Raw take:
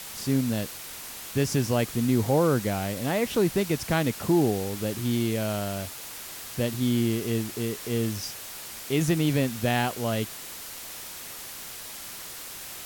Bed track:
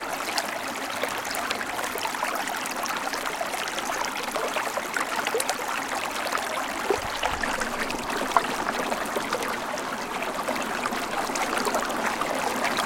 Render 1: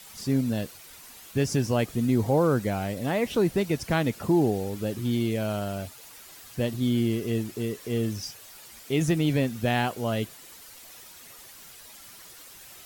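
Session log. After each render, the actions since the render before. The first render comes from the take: denoiser 10 dB, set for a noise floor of -40 dBFS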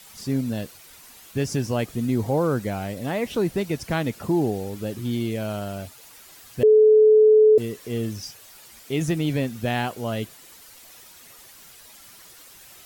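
6.63–7.58 bleep 431 Hz -10.5 dBFS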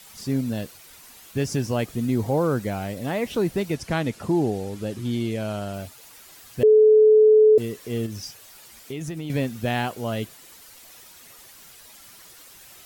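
3.75–5.74 LPF 11000 Hz; 8.06–9.3 compressor 4:1, threshold -29 dBFS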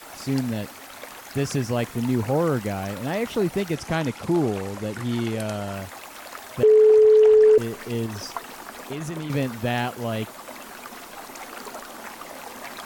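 add bed track -12 dB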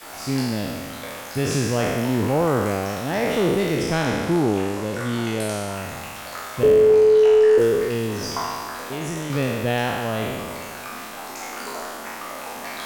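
spectral trails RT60 1.90 s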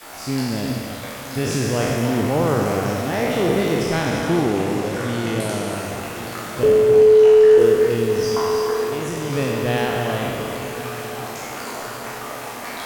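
diffused feedback echo 1.069 s, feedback 44%, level -11.5 dB; non-linear reverb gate 0.36 s rising, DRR 5 dB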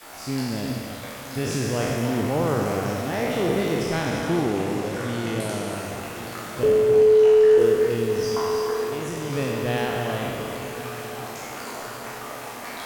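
gain -4 dB

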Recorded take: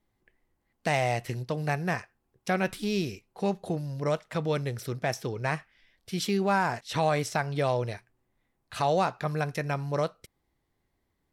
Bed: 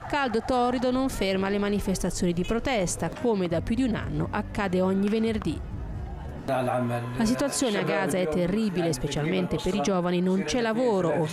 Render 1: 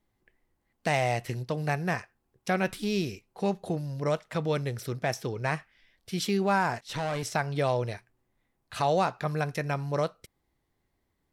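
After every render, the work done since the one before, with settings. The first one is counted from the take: 6.78–7.23 tube stage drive 26 dB, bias 0.5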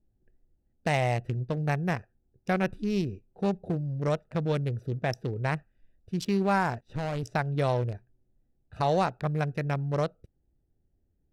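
Wiener smoothing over 41 samples; low shelf 100 Hz +9.5 dB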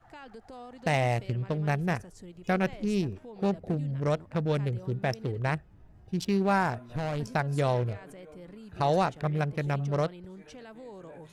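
add bed -21.5 dB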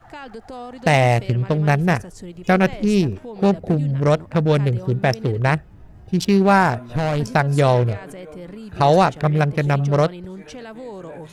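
gain +11 dB

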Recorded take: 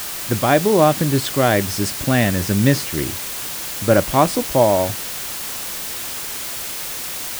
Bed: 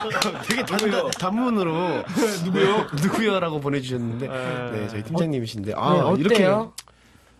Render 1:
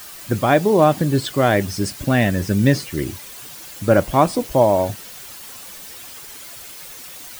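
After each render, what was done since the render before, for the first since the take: denoiser 11 dB, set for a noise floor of -28 dBFS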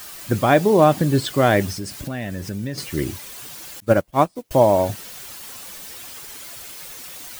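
1.72–2.78 compressor 3:1, threshold -28 dBFS; 3.8–4.51 upward expander 2.5:1, over -32 dBFS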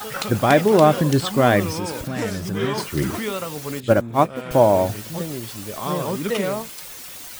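add bed -6 dB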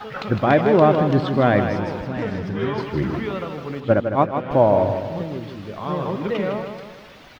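air absorption 300 m; feedback echo 0.157 s, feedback 47%, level -7.5 dB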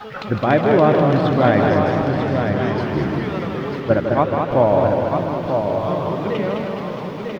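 on a send: echo 0.944 s -6 dB; on the sum: warbling echo 0.207 s, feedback 63%, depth 121 cents, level -5.5 dB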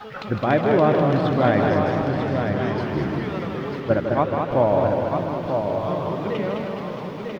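gain -3.5 dB

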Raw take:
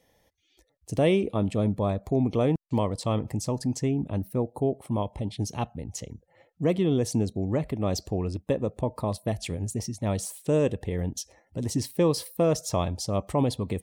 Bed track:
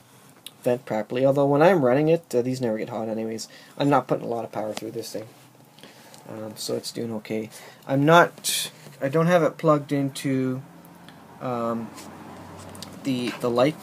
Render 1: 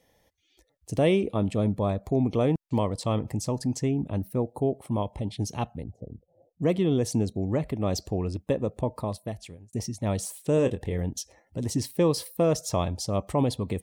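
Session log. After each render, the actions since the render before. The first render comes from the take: 5.83–6.62 elliptic low-pass 710 Hz; 8.88–9.73 fade out; 10.55–10.98 doubler 24 ms -10 dB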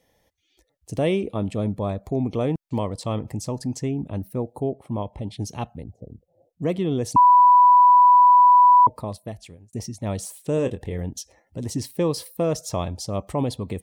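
4.69–5.21 high shelf 3400 Hz -> 6900 Hz -12 dB; 7.16–8.87 bleep 988 Hz -9.5 dBFS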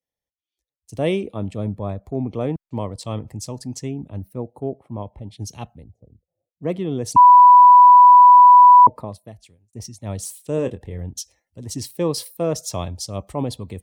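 three-band expander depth 70%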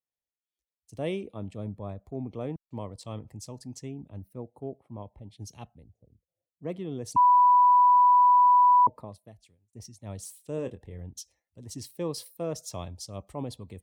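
gain -10.5 dB

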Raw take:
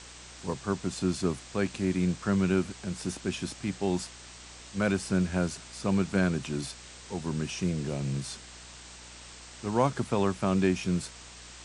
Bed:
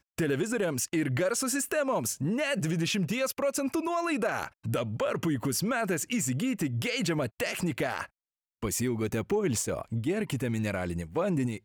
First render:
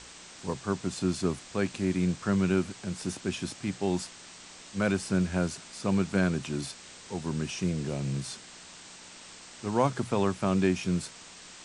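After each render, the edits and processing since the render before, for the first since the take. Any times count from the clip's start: de-hum 60 Hz, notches 2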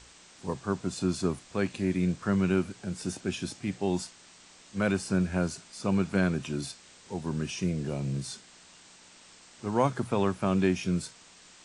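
noise print and reduce 6 dB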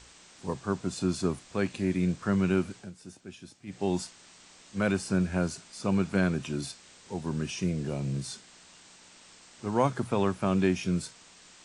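2.76–3.82 dip -13 dB, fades 0.16 s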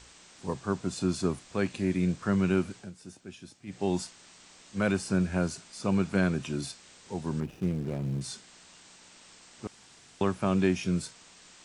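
7.4–8.21 median filter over 41 samples; 9.67–10.21 room tone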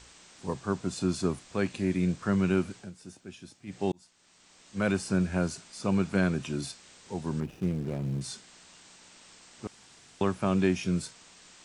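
3.92–4.9 fade in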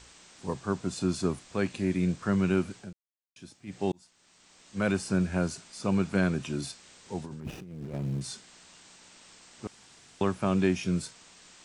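2.93–3.36 mute; 7.25–7.94 negative-ratio compressor -40 dBFS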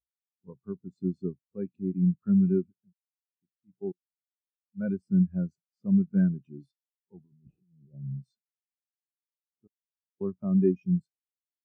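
spectral expander 2.5:1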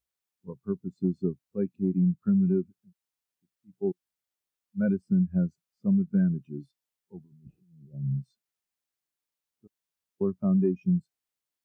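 in parallel at +0.5 dB: limiter -22.5 dBFS, peak gain reduction 9.5 dB; on the sum: compressor 4:1, threshold -21 dBFS, peak gain reduction 6 dB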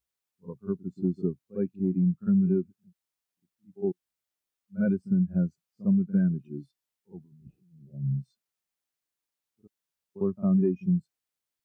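reverse echo 52 ms -16.5 dB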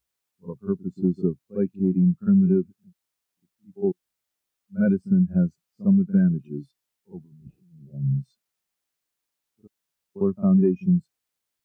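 gain +5 dB

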